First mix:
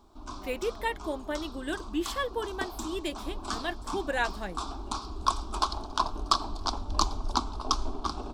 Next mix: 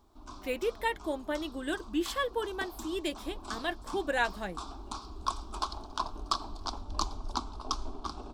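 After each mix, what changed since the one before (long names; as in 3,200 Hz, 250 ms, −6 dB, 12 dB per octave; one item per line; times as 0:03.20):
background −6.0 dB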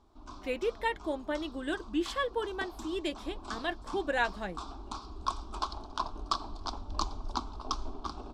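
master: add high-frequency loss of the air 53 metres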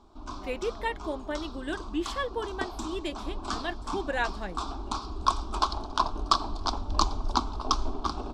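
background +8.0 dB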